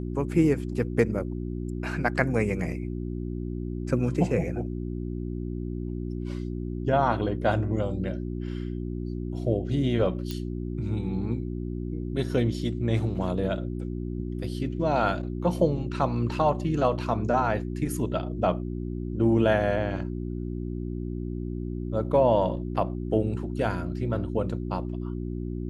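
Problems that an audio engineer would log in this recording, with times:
hum 60 Hz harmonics 6 -32 dBFS
10.31 s: pop -19 dBFS

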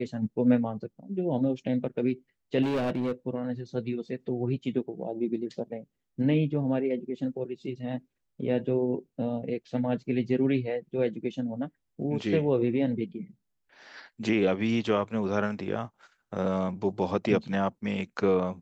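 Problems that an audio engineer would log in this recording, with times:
2.62–3.12 s: clipped -24 dBFS

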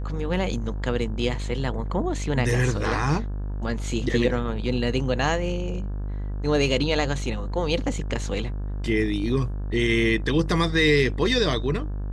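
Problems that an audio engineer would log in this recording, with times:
buzz 50 Hz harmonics 35 -29 dBFS

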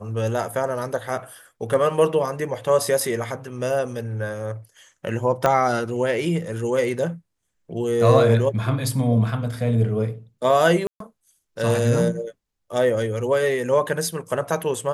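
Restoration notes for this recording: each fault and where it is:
5.46 s: pop -7 dBFS
10.87–11.00 s: dropout 133 ms

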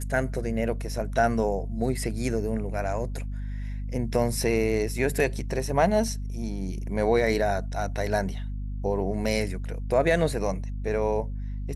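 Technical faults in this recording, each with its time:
hum 50 Hz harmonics 5 -32 dBFS

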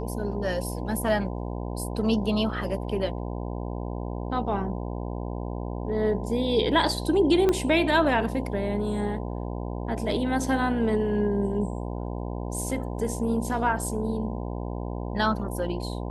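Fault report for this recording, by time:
buzz 60 Hz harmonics 17 -32 dBFS
7.49 s: pop -11 dBFS

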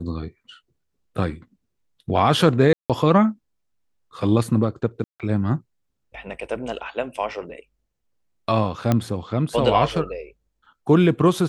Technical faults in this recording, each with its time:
2.73–2.90 s: dropout 167 ms
5.04–5.20 s: dropout 157 ms
8.92 s: pop -7 dBFS

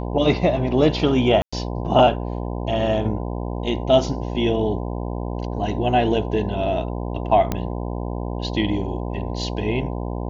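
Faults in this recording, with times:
buzz 60 Hz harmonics 17 -27 dBFS
1.42–1.52 s: dropout 105 ms
7.52 s: pop -9 dBFS

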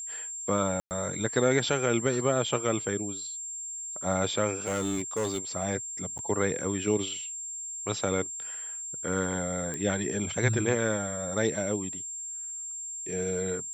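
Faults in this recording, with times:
whine 7.4 kHz -35 dBFS
0.80–0.91 s: dropout 109 ms
4.66–5.38 s: clipped -25 dBFS
6.18–6.19 s: dropout 9.5 ms
9.74 s: pop -21 dBFS

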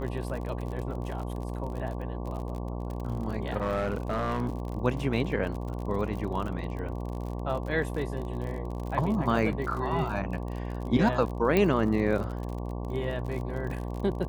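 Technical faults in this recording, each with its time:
buzz 60 Hz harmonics 19 -34 dBFS
crackle 45 per s -35 dBFS
3.60–4.50 s: clipped -23.5 dBFS
11.57 s: pop -12 dBFS

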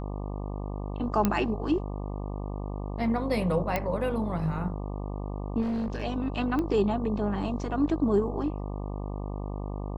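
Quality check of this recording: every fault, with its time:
buzz 50 Hz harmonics 24 -34 dBFS
1.25 s: pop -10 dBFS
3.76 s: pop -13 dBFS
5.61–6.02 s: clipped -26.5 dBFS
6.59 s: pop -19 dBFS

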